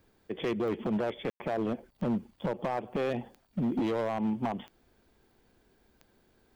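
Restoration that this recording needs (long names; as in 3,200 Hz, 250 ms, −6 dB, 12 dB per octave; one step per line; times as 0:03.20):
clipped peaks rebuilt −25.5 dBFS
click removal
ambience match 0:01.30–0:01.40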